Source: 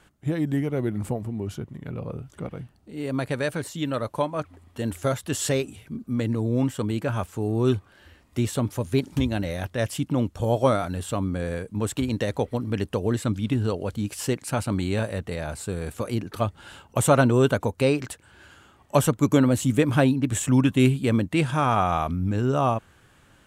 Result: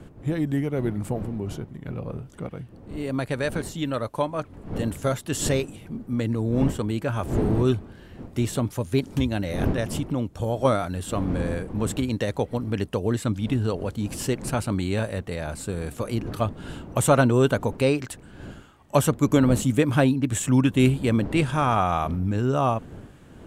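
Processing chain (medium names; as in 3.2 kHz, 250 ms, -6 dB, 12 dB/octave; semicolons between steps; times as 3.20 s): wind noise 260 Hz -36 dBFS; 9.77–10.65 s: compression 2.5:1, threshold -23 dBFS, peak gain reduction 5 dB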